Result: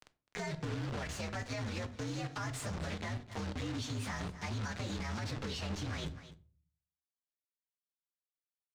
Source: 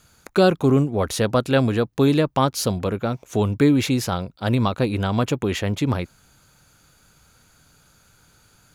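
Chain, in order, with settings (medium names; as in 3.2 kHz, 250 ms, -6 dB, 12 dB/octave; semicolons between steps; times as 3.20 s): frequency axis rescaled in octaves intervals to 120%; reverse; compression 5:1, threshold -33 dBFS, peak gain reduction 18.5 dB; reverse; high-pass 63 Hz 24 dB/octave; amplifier tone stack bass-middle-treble 5-5-5; de-hum 84.51 Hz, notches 3; bit crusher 9-bit; distance through air 110 m; on a send: delay 255 ms -20 dB; on the sum: simulated room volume 240 m³, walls furnished, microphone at 0.42 m; peak limiter -47 dBFS, peak gain reduction 9.5 dB; three bands compressed up and down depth 40%; trim +16.5 dB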